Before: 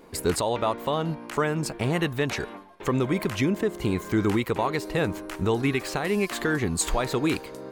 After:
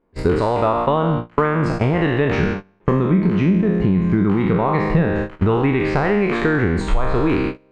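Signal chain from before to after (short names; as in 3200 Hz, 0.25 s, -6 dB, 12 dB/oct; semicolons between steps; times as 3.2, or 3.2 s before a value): spectral trails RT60 1.07 s; 2.4–5.08 bell 180 Hz +14.5 dB 0.44 oct; gate -28 dBFS, range -29 dB; vocal rider within 3 dB 0.5 s; low shelf 89 Hz +9 dB; compressor 5:1, threshold -21 dBFS, peak gain reduction 10.5 dB; LPF 1900 Hz 12 dB/oct; gain +8 dB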